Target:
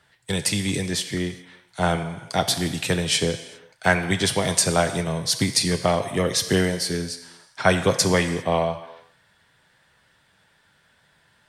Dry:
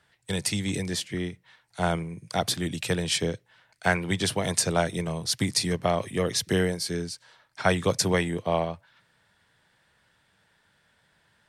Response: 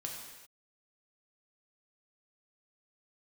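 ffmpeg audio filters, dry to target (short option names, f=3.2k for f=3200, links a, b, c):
-filter_complex "[0:a]asplit=2[a][b];[b]highpass=f=550:p=1[c];[1:a]atrim=start_sample=2205,adelay=8[d];[c][d]afir=irnorm=-1:irlink=0,volume=-5dB[e];[a][e]amix=inputs=2:normalize=0,volume=4dB"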